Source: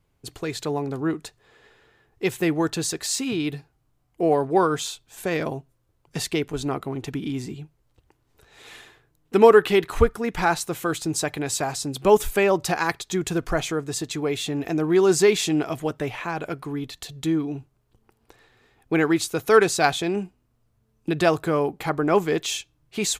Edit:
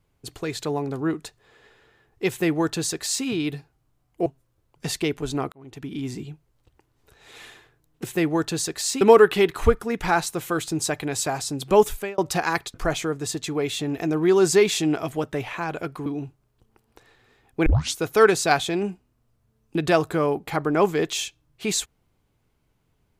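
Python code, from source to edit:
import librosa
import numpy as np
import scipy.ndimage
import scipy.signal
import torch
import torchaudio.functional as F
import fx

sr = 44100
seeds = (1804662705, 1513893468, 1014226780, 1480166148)

y = fx.edit(x, sr, fx.duplicate(start_s=2.29, length_s=0.97, to_s=9.35),
    fx.cut(start_s=4.26, length_s=1.31),
    fx.fade_in_span(start_s=6.83, length_s=0.6),
    fx.fade_out_span(start_s=12.15, length_s=0.37),
    fx.cut(start_s=13.08, length_s=0.33),
    fx.cut(start_s=16.73, length_s=0.66),
    fx.tape_start(start_s=18.99, length_s=0.29), tone=tone)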